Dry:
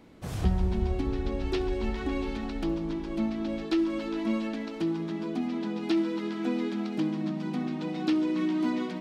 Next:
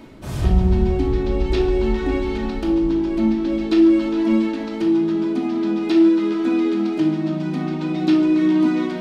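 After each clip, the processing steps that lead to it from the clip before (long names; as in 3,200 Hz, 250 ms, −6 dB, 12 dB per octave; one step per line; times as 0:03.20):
reversed playback
upward compression, threshold −33 dBFS
reversed playback
rectangular room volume 1,000 cubic metres, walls furnished, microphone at 2.7 metres
level +4 dB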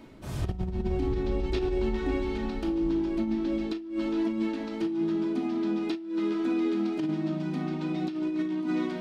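compressor whose output falls as the input rises −18 dBFS, ratio −0.5
level −9 dB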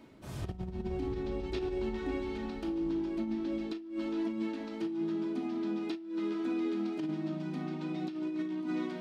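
high-pass filter 78 Hz 6 dB per octave
level −5.5 dB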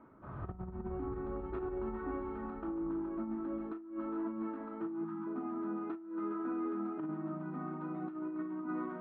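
time-frequency box erased 0:05.05–0:05.27, 330–680 Hz
hard clipping −27 dBFS, distortion −33 dB
transistor ladder low-pass 1,400 Hz, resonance 65%
level +6.5 dB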